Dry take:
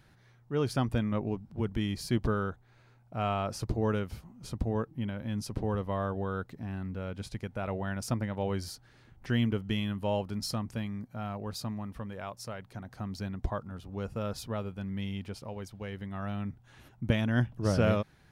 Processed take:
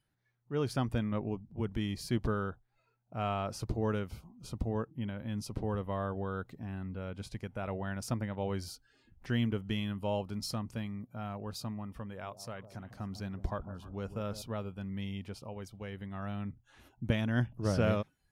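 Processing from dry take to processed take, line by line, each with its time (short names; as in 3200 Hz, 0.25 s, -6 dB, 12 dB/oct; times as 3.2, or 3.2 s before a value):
12.08–14.42 echo with dull and thin repeats by turns 0.152 s, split 860 Hz, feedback 56%, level -12 dB
whole clip: spectral noise reduction 17 dB; gain -3 dB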